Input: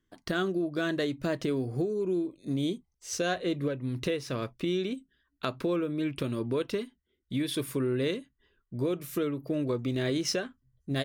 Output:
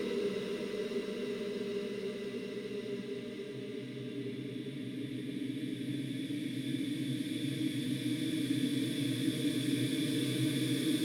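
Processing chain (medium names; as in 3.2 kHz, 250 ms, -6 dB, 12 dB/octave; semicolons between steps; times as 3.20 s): Paulstretch 21×, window 1.00 s, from 6.87 s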